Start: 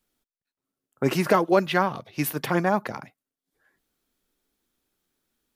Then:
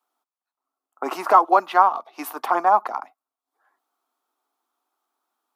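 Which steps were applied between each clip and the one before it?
steep high-pass 270 Hz 36 dB/octave; high-order bell 950 Hz +16 dB 1.2 oct; trim -5.5 dB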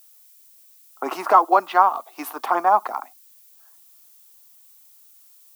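added noise violet -52 dBFS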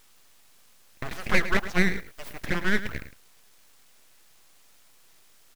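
full-wave rectifier; delay 107 ms -13 dB; trim -5 dB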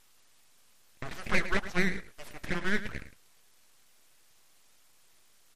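flange 0.6 Hz, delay 1 ms, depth 9.4 ms, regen -80%; MP3 56 kbps 48 kHz

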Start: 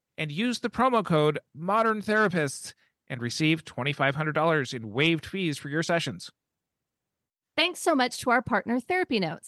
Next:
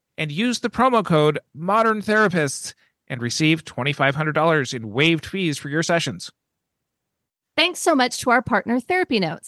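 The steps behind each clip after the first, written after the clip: dynamic bell 6.4 kHz, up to +5 dB, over -50 dBFS, Q 2.5; trim +6 dB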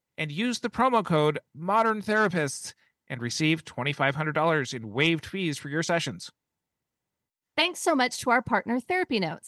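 small resonant body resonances 900/2000 Hz, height 8 dB; trim -6.5 dB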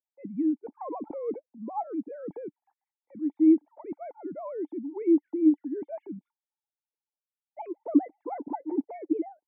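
formants replaced by sine waves; cascade formant filter u; trim +5.5 dB

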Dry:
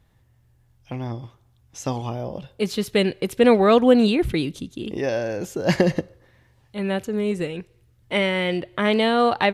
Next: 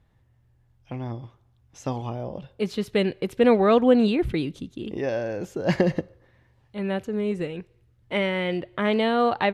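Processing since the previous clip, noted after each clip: treble shelf 4.6 kHz -10.5 dB; trim -2.5 dB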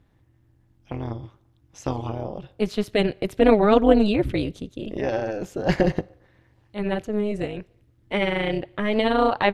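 AM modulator 210 Hz, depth 65%; trim +5 dB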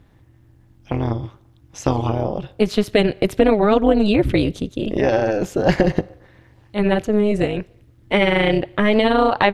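compression 5:1, threshold -20 dBFS, peak gain reduction 10 dB; trim +9 dB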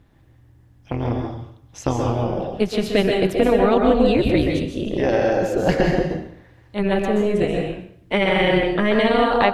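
plate-style reverb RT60 0.59 s, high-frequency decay 0.9×, pre-delay 115 ms, DRR 1 dB; trim -3 dB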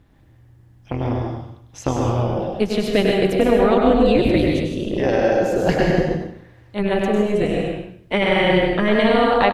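delay 100 ms -5.5 dB

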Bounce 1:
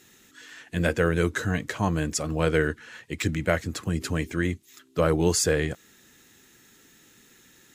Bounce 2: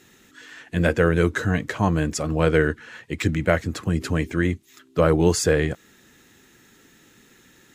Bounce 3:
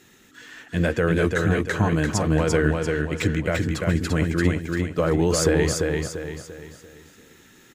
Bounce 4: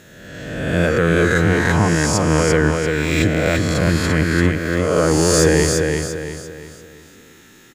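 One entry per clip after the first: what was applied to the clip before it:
treble shelf 3.5 kHz -7 dB; trim +4.5 dB
peak limiter -10.5 dBFS, peak gain reduction 8 dB; on a send: feedback delay 343 ms, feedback 40%, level -3.5 dB
reverse spectral sustain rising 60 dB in 1.40 s; trim +2.5 dB

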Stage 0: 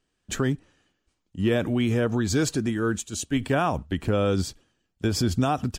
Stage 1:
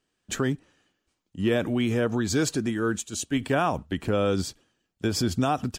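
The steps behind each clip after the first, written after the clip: bass shelf 80 Hz -11 dB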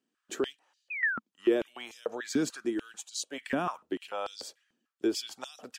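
painted sound fall, 0.90–1.19 s, 1.3–2.6 kHz -27 dBFS; step-sequenced high-pass 6.8 Hz 230–4400 Hz; trim -9 dB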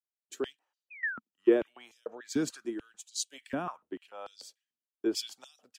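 three bands expanded up and down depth 100%; trim -5.5 dB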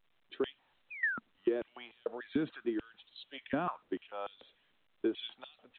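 compression 8:1, threshold -31 dBFS, peak gain reduction 14.5 dB; trim +3 dB; A-law 64 kbps 8 kHz

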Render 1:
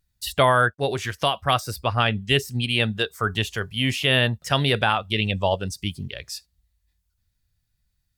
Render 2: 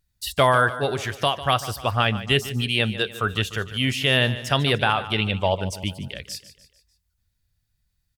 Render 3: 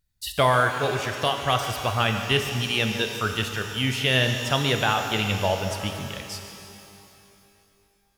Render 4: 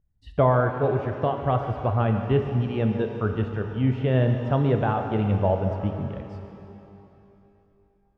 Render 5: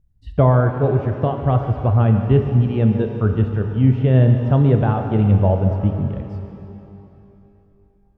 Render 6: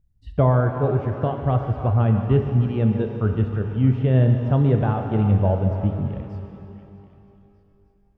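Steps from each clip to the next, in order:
feedback delay 148 ms, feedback 48%, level -14.5 dB
pitch-shifted reverb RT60 2.7 s, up +12 st, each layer -8 dB, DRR 5.5 dB; trim -2.5 dB
Bessel low-pass 570 Hz, order 2; trim +5 dB
bass shelf 330 Hz +10.5 dB
repeats whose band climbs or falls 311 ms, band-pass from 1 kHz, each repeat 0.7 oct, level -10 dB; trim -3.5 dB

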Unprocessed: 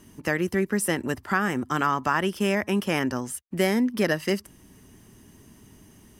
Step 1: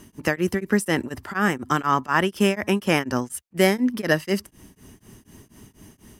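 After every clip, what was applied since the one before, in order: tremolo of two beating tones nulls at 4.1 Hz; trim +6 dB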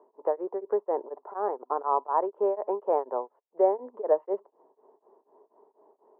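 elliptic band-pass 420–980 Hz, stop band 80 dB; trim +1 dB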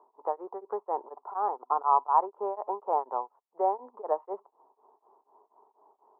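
high-order bell 1 kHz +11.5 dB 1.1 oct; trim -8 dB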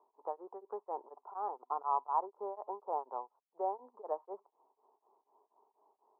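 low-pass 1.4 kHz 12 dB/octave; trim -8.5 dB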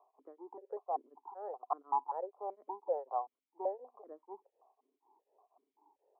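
stepped vowel filter 5.2 Hz; trim +11.5 dB

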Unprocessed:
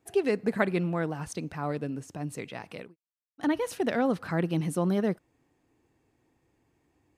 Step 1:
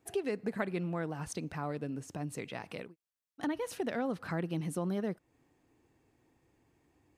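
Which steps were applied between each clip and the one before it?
compression 2:1, threshold -37 dBFS, peak gain reduction 9.5 dB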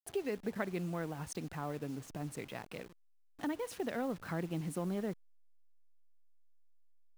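send-on-delta sampling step -47.5 dBFS; trim -2.5 dB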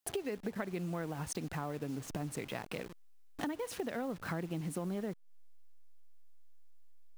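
compression 4:1, threshold -48 dBFS, peak gain reduction 14.5 dB; trim +11 dB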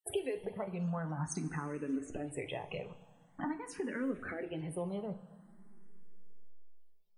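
loudest bins only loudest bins 64; two-slope reverb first 0.28 s, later 2.8 s, from -17 dB, DRR 6 dB; barber-pole phaser +0.46 Hz; trim +2 dB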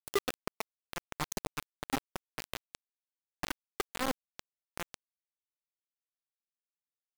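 bit crusher 5-bit; trim +2 dB

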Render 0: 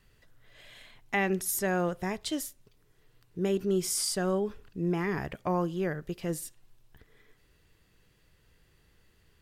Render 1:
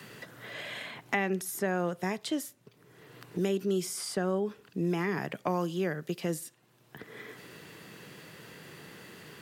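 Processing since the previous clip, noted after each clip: high-pass 140 Hz 24 dB/octave; three bands compressed up and down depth 70%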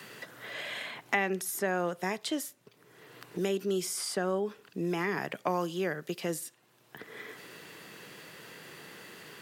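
bass shelf 210 Hz -11 dB; trim +2 dB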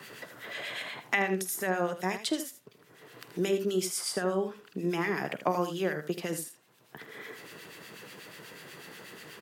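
harmonic tremolo 8.2 Hz, crossover 1.5 kHz; early reflections 48 ms -17.5 dB, 79 ms -10.5 dB; trim +4 dB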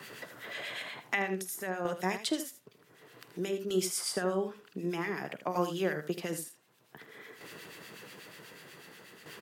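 tremolo saw down 0.54 Hz, depth 55%

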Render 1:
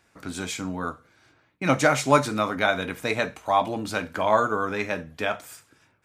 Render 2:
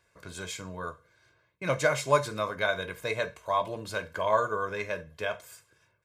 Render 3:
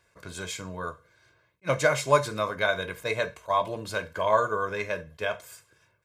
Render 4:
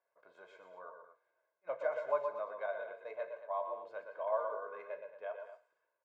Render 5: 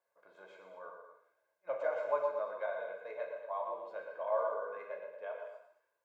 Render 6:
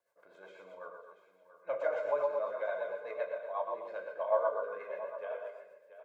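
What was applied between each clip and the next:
comb 1.9 ms, depth 73%; trim -7.5 dB
attacks held to a fixed rise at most 580 dB/s; trim +2.5 dB
ladder band-pass 760 Hz, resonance 45%; multi-tap echo 120/122/182/228 ms -9.5/-10/-17/-12.5 dB; trim -4 dB
gated-style reverb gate 260 ms falling, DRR 3 dB
rotary cabinet horn 8 Hz; delay 683 ms -13.5 dB; trim +5 dB

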